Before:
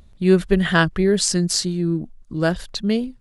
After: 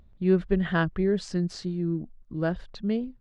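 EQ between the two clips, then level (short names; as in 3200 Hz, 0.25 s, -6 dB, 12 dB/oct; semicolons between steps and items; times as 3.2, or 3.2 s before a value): tape spacing loss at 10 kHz 27 dB; -6.0 dB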